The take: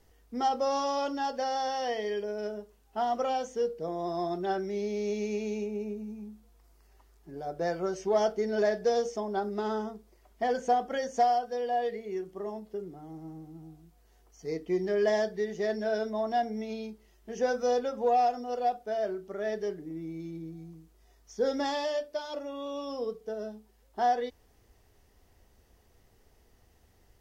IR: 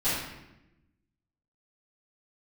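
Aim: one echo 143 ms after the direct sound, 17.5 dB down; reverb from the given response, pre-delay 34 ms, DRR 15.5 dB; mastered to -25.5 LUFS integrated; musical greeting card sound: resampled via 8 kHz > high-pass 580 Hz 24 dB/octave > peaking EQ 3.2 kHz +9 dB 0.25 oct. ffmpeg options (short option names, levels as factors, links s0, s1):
-filter_complex "[0:a]aecho=1:1:143:0.133,asplit=2[s0][s1];[1:a]atrim=start_sample=2205,adelay=34[s2];[s1][s2]afir=irnorm=-1:irlink=0,volume=0.0473[s3];[s0][s3]amix=inputs=2:normalize=0,aresample=8000,aresample=44100,highpass=f=580:w=0.5412,highpass=f=580:w=1.3066,equalizer=f=3200:t=o:w=0.25:g=9,volume=2.51"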